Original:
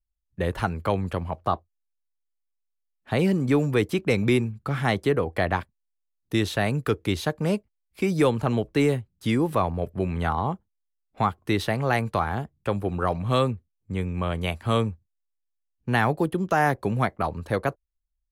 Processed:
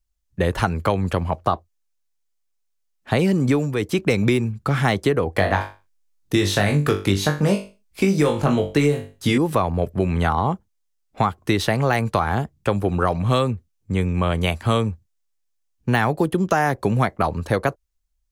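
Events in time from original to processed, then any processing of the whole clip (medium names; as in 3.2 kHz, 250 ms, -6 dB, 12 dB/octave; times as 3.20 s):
3.51–4.04 s: dip -9 dB, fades 0.25 s
5.33–9.38 s: flutter echo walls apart 3.5 m, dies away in 0.28 s
whole clip: de-esser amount 60%; peaking EQ 6.4 kHz +4.5 dB 0.88 oct; compression, threshold -22 dBFS; trim +7.5 dB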